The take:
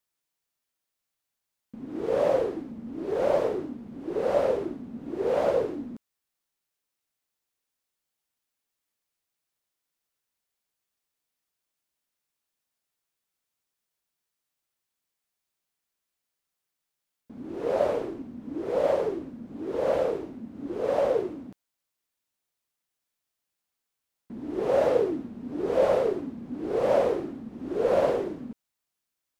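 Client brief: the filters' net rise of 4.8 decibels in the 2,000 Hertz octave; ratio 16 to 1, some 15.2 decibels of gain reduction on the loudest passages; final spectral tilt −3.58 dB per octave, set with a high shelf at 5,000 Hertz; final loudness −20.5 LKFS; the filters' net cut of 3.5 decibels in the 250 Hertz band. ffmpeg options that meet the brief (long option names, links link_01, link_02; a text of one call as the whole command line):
ffmpeg -i in.wav -af "equalizer=frequency=250:width_type=o:gain=-5,equalizer=frequency=2000:width_type=o:gain=5.5,highshelf=frequency=5000:gain=5,acompressor=threshold=-34dB:ratio=16,volume=19.5dB" out.wav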